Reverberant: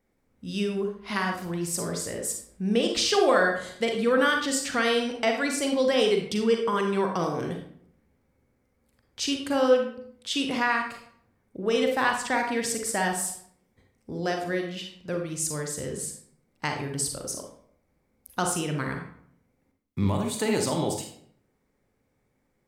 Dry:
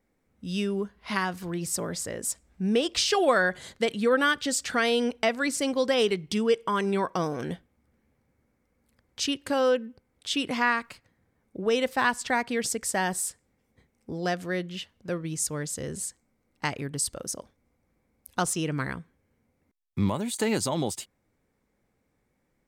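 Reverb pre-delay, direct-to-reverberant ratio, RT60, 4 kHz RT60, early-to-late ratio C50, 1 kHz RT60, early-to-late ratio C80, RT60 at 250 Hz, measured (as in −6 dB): 36 ms, 2.5 dB, 0.65 s, 0.45 s, 5.0 dB, 0.60 s, 9.0 dB, 0.75 s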